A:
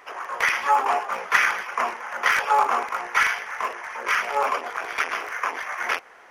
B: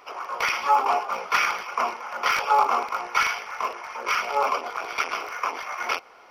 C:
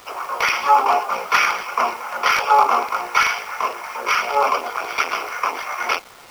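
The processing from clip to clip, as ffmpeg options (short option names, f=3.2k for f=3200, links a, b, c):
-af "superequalizer=11b=0.316:14b=1.58:15b=0.447:16b=0.501"
-af "acrusher=bits=7:mix=0:aa=0.000001,volume=5.5dB"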